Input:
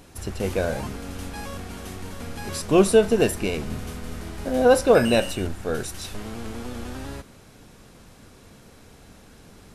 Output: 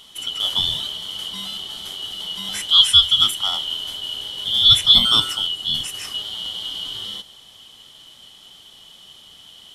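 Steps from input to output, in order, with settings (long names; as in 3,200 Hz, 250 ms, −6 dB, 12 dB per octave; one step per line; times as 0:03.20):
band-splitting scrambler in four parts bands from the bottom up 2413
0:02.75–0:03.47: parametric band 390 Hz −9 dB 1.5 octaves
level +3 dB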